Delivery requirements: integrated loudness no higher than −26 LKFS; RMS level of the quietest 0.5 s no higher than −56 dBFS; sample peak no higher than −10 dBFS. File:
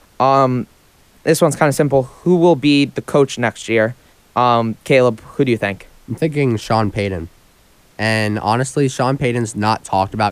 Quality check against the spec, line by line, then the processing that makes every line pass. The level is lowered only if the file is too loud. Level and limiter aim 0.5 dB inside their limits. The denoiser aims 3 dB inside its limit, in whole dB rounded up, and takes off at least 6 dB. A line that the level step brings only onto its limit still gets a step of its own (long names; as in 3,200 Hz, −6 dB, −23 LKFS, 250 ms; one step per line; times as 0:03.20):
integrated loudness −16.5 LKFS: out of spec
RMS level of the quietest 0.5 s −51 dBFS: out of spec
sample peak −1.5 dBFS: out of spec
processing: level −10 dB